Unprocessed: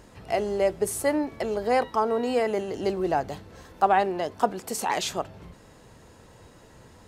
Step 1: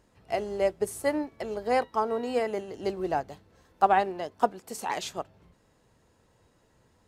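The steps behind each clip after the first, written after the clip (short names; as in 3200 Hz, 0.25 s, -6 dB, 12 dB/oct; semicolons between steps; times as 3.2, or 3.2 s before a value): upward expander 1.5:1, over -43 dBFS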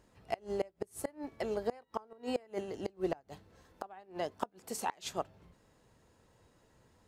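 flipped gate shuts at -19 dBFS, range -28 dB; gain -1.5 dB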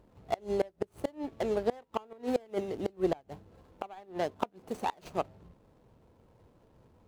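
median filter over 25 samples; gain +5.5 dB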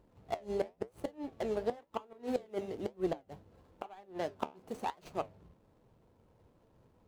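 flange 1 Hz, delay 5.4 ms, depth 8.8 ms, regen -72%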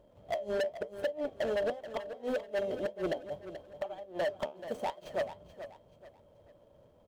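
small resonant body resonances 590/3200 Hz, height 18 dB, ringing for 50 ms; overloaded stage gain 28 dB; on a send: feedback echo 0.432 s, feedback 33%, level -12 dB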